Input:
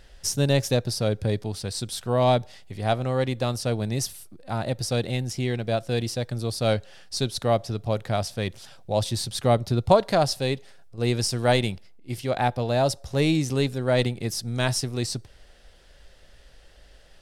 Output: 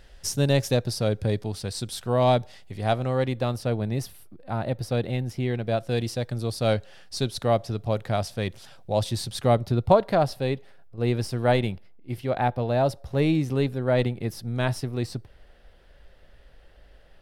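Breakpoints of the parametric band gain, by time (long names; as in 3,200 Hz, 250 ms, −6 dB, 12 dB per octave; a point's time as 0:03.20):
parametric band 7,000 Hz 1.7 octaves
0:02.96 −3 dB
0:03.81 −14 dB
0:05.44 −14 dB
0:05.95 −4.5 dB
0:09.41 −4.5 dB
0:10.06 −14.5 dB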